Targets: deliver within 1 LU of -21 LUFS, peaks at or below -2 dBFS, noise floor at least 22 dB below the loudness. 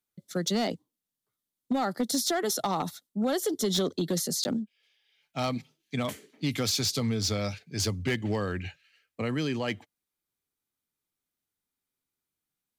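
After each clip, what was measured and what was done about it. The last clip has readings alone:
clipped 0.4%; flat tops at -21.0 dBFS; dropouts 1; longest dropout 10 ms; loudness -30.0 LUFS; peak -21.0 dBFS; loudness target -21.0 LUFS
-> clip repair -21 dBFS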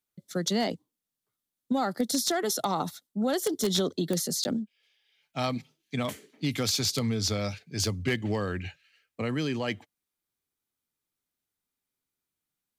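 clipped 0.0%; dropouts 1; longest dropout 10 ms
-> interpolate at 4.44, 10 ms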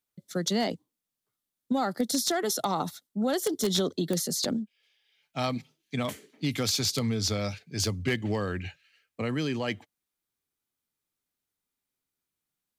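dropouts 0; loudness -29.5 LUFS; peak -12.0 dBFS; loudness target -21.0 LUFS
-> gain +8.5 dB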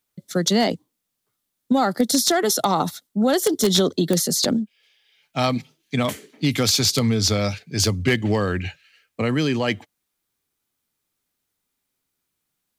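loudness -21.0 LUFS; peak -3.5 dBFS; noise floor -78 dBFS

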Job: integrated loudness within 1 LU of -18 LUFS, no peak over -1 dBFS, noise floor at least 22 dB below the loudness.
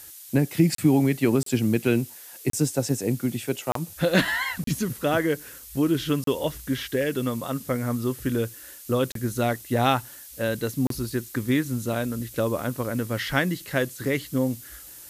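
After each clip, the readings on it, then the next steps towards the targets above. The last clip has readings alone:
dropouts 8; longest dropout 33 ms; noise floor -44 dBFS; noise floor target -48 dBFS; loudness -25.5 LUFS; peak -7.0 dBFS; loudness target -18.0 LUFS
-> interpolate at 0.75/1.43/2.5/3.72/4.64/6.24/9.12/10.87, 33 ms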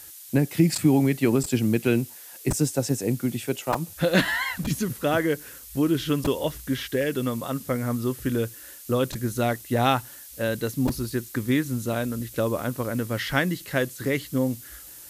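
dropouts 0; noise floor -44 dBFS; noise floor target -48 dBFS
-> denoiser 6 dB, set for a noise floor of -44 dBFS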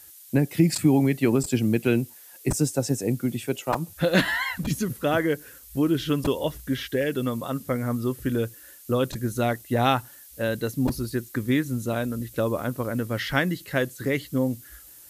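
noise floor -48 dBFS; loudness -25.5 LUFS; peak -7.0 dBFS; loudness target -18.0 LUFS
-> gain +7.5 dB; limiter -1 dBFS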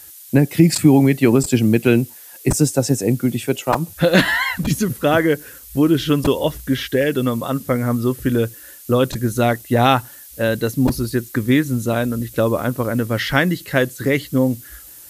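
loudness -18.5 LUFS; peak -1.0 dBFS; noise floor -41 dBFS

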